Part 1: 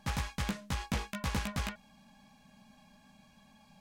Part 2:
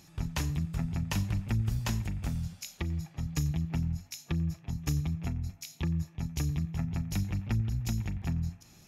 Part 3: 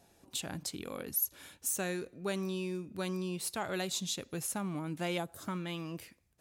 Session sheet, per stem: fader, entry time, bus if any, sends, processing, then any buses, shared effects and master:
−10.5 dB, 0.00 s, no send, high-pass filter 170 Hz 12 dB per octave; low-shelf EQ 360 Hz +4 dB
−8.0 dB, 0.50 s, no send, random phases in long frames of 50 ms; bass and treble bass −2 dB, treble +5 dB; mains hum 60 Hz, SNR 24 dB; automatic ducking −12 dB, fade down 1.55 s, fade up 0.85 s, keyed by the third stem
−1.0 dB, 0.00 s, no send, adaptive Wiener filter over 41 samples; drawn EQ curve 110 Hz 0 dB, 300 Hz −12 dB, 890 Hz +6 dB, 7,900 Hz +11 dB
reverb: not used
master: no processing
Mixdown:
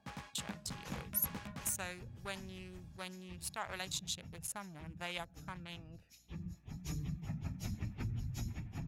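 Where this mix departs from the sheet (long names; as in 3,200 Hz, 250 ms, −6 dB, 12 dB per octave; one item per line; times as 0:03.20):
stem 3 −1.0 dB → −7.0 dB
master: extra high-shelf EQ 4,400 Hz −7 dB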